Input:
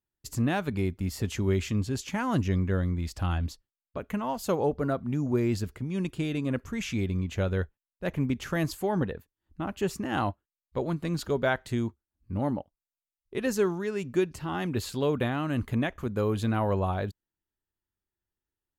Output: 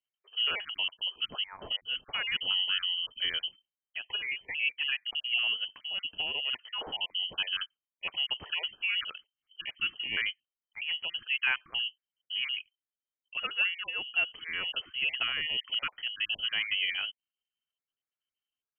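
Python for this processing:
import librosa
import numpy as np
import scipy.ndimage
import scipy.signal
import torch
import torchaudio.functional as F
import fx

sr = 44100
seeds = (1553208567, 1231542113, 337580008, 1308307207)

y = fx.spec_dropout(x, sr, seeds[0], share_pct=26)
y = fx.dynamic_eq(y, sr, hz=1400.0, q=0.84, threshold_db=-42.0, ratio=4.0, max_db=3)
y = fx.freq_invert(y, sr, carrier_hz=3100)
y = y * 10.0 ** (-4.0 / 20.0)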